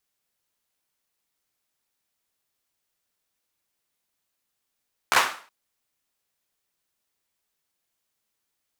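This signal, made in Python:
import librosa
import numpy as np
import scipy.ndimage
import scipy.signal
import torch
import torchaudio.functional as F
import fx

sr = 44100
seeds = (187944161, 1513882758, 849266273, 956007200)

y = fx.drum_clap(sr, seeds[0], length_s=0.37, bursts=4, spacing_ms=14, hz=1200.0, decay_s=0.42)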